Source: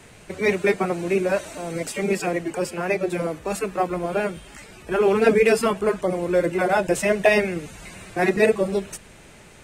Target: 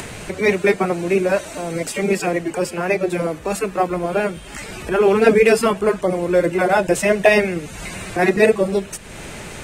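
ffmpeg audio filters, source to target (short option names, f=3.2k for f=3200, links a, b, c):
-af "acompressor=mode=upward:threshold=-26dB:ratio=2.5,volume=4dB"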